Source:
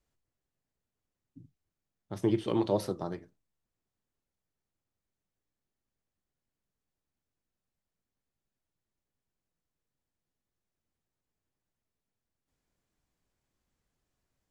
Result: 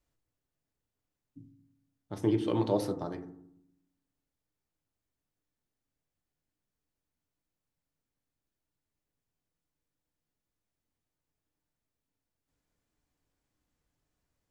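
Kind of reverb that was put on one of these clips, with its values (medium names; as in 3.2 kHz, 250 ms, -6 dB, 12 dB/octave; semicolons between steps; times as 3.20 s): FDN reverb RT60 0.71 s, low-frequency decay 1.55×, high-frequency decay 0.25×, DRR 7.5 dB; trim -1 dB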